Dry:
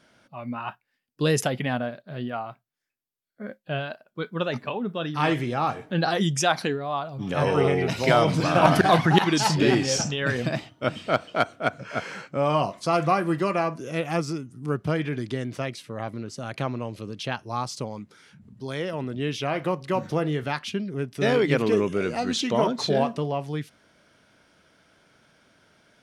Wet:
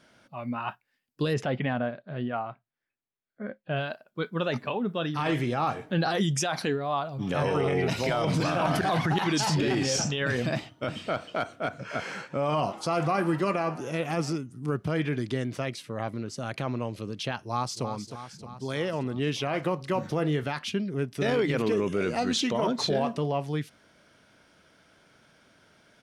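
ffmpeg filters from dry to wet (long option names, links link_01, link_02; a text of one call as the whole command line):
ffmpeg -i in.wav -filter_complex "[0:a]asplit=3[link_01][link_02][link_03];[link_01]afade=type=out:start_time=1.33:duration=0.02[link_04];[link_02]lowpass=2800,afade=type=in:start_time=1.33:duration=0.02,afade=type=out:start_time=3.75:duration=0.02[link_05];[link_03]afade=type=in:start_time=3.75:duration=0.02[link_06];[link_04][link_05][link_06]amix=inputs=3:normalize=0,asettb=1/sr,asplit=3[link_07][link_08][link_09];[link_07]atrim=end=11.774[link_10];[link_08]atrim=start=11.77:end=14.36,asetpts=PTS-STARTPTS,afade=type=in:duration=0.004:curve=qsin,afade=type=out:start_time=2.586:duration=0.004:curve=qsin,asplit=6[link_11][link_12][link_13][link_14][link_15][link_16];[link_12]adelay=116,afreqshift=89,volume=-22dB[link_17];[link_13]adelay=232,afreqshift=178,volume=-26.3dB[link_18];[link_14]adelay=348,afreqshift=267,volume=-30.6dB[link_19];[link_15]adelay=464,afreqshift=356,volume=-34.9dB[link_20];[link_16]adelay=580,afreqshift=445,volume=-39.2dB[link_21];[link_11][link_17][link_18][link_19][link_20][link_21]amix=inputs=6:normalize=0,atrim=end_sample=114219[link_22];[link_09]atrim=start=14.356[link_23];[link_10][link_22]acrossfade=duration=0.004:curve1=hsin:curve2=qsin[link_24];[link_24][link_23]acrossfade=duration=0.004:curve1=qsin:curve2=hsin,asplit=2[link_25][link_26];[link_26]afade=type=in:start_time=17.42:duration=0.01,afade=type=out:start_time=17.84:duration=0.01,aecho=0:1:310|620|930|1240|1550|1860|2170|2480|2790:0.334965|0.217728|0.141523|0.0919899|0.0597934|0.0388657|0.0252627|0.0164208|0.0106735[link_27];[link_25][link_27]amix=inputs=2:normalize=0,alimiter=limit=-17.5dB:level=0:latency=1:release=19" out.wav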